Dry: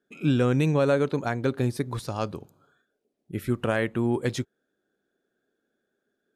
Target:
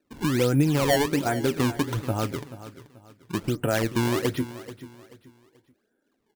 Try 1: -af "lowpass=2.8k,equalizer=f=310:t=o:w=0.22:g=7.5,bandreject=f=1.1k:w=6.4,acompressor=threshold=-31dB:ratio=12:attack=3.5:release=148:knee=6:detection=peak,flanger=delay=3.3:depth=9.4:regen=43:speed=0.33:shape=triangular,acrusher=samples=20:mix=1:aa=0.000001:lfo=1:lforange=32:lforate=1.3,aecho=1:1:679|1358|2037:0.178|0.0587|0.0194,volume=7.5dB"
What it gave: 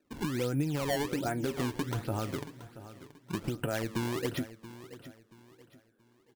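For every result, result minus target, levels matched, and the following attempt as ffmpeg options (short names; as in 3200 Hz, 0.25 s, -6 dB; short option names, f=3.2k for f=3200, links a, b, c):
echo 0.245 s late; compressor: peak gain reduction +10 dB
-af "lowpass=2.8k,equalizer=f=310:t=o:w=0.22:g=7.5,bandreject=f=1.1k:w=6.4,acompressor=threshold=-31dB:ratio=12:attack=3.5:release=148:knee=6:detection=peak,flanger=delay=3.3:depth=9.4:regen=43:speed=0.33:shape=triangular,acrusher=samples=20:mix=1:aa=0.000001:lfo=1:lforange=32:lforate=1.3,aecho=1:1:434|868|1302:0.178|0.0587|0.0194,volume=7.5dB"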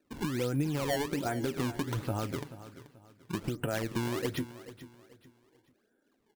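compressor: peak gain reduction +10 dB
-af "lowpass=2.8k,equalizer=f=310:t=o:w=0.22:g=7.5,bandreject=f=1.1k:w=6.4,acompressor=threshold=-20dB:ratio=12:attack=3.5:release=148:knee=6:detection=peak,flanger=delay=3.3:depth=9.4:regen=43:speed=0.33:shape=triangular,acrusher=samples=20:mix=1:aa=0.000001:lfo=1:lforange=32:lforate=1.3,aecho=1:1:434|868|1302:0.178|0.0587|0.0194,volume=7.5dB"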